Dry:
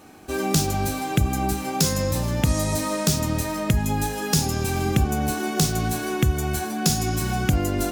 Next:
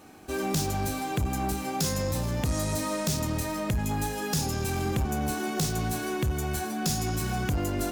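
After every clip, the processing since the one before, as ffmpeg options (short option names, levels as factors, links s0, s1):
-filter_complex "[0:a]asplit=2[s0][s1];[s1]acrusher=bits=5:mode=log:mix=0:aa=0.000001,volume=0.299[s2];[s0][s2]amix=inputs=2:normalize=0,asoftclip=type=tanh:threshold=0.158,volume=0.531"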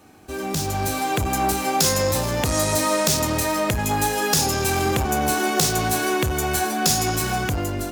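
-filter_complex "[0:a]acrossover=split=320[s0][s1];[s1]dynaudnorm=f=320:g=5:m=3.76[s2];[s0][s2]amix=inputs=2:normalize=0,equalizer=f=93:w=1.9:g=4.5"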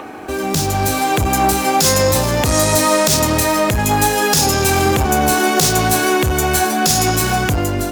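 -filter_complex "[0:a]acrossover=split=260|2600[s0][s1][s2];[s1]acompressor=mode=upward:threshold=0.0447:ratio=2.5[s3];[s0][s3][s2]amix=inputs=3:normalize=0,alimiter=level_in=2.51:limit=0.891:release=50:level=0:latency=1,volume=0.891"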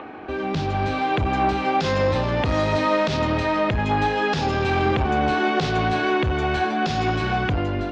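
-af "lowpass=f=3600:w=0.5412,lowpass=f=3600:w=1.3066,volume=0.531"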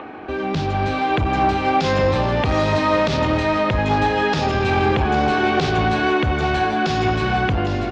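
-af "aecho=1:1:810:0.316,volume=1.33"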